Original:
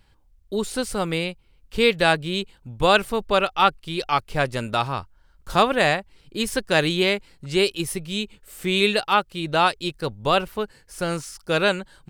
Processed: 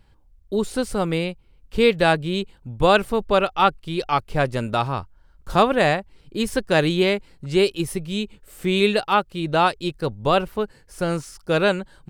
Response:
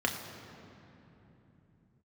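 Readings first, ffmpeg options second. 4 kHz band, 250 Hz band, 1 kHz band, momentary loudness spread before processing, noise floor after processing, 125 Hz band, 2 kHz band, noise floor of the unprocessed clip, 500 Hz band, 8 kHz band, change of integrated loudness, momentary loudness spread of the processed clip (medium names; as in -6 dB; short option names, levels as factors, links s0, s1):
-2.5 dB, +3.0 dB, +0.5 dB, 12 LU, -55 dBFS, +3.5 dB, -1.5 dB, -57 dBFS, +2.5 dB, -3.5 dB, +1.0 dB, 11 LU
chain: -af "tiltshelf=f=1200:g=3.5"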